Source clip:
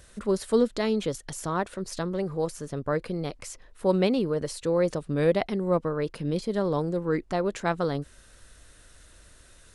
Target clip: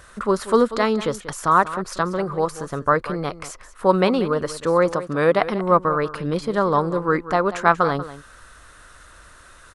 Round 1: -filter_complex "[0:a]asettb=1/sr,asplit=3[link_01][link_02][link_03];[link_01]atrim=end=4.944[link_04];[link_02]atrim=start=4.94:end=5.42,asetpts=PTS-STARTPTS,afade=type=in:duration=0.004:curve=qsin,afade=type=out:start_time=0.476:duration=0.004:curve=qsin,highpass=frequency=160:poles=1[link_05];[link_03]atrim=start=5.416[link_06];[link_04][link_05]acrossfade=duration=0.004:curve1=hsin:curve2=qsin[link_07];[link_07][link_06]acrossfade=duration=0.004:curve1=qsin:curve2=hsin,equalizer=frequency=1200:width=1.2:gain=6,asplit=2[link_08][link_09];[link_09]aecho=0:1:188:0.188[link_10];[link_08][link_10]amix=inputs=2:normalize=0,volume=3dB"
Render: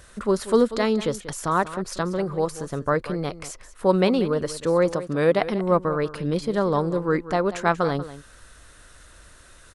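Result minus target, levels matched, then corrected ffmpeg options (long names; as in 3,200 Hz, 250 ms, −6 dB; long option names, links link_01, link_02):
1,000 Hz band −4.0 dB
-filter_complex "[0:a]asettb=1/sr,asplit=3[link_01][link_02][link_03];[link_01]atrim=end=4.944[link_04];[link_02]atrim=start=4.94:end=5.42,asetpts=PTS-STARTPTS,afade=type=in:duration=0.004:curve=qsin,afade=type=out:start_time=0.476:duration=0.004:curve=qsin,highpass=frequency=160:poles=1[link_05];[link_03]atrim=start=5.416[link_06];[link_04][link_05]acrossfade=duration=0.004:curve1=hsin:curve2=qsin[link_07];[link_07][link_06]acrossfade=duration=0.004:curve1=qsin:curve2=hsin,equalizer=frequency=1200:width=1.2:gain=14.5,asplit=2[link_08][link_09];[link_09]aecho=0:1:188:0.188[link_10];[link_08][link_10]amix=inputs=2:normalize=0,volume=3dB"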